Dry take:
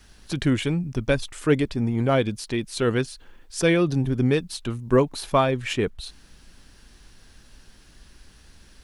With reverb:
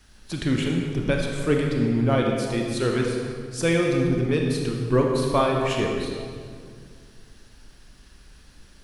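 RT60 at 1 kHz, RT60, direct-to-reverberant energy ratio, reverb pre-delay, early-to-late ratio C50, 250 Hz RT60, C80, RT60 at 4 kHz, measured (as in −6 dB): 2.0 s, 2.1 s, 0.0 dB, 27 ms, 1.5 dB, 2.8 s, 3.0 dB, 1.5 s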